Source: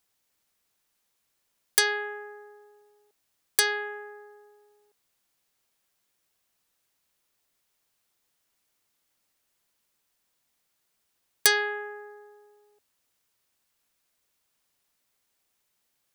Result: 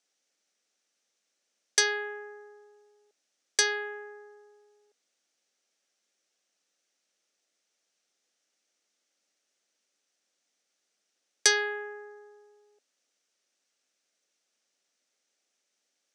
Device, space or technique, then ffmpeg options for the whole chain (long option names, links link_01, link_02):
television speaker: -af "highpass=frequency=220:width=0.5412,highpass=frequency=220:width=1.3066,equalizer=frequency=550:width_type=q:width=4:gain=4,equalizer=frequency=1000:width_type=q:width=4:gain=-9,equalizer=frequency=5900:width_type=q:width=4:gain=7,lowpass=frequency=8100:width=0.5412,lowpass=frequency=8100:width=1.3066,volume=-1.5dB"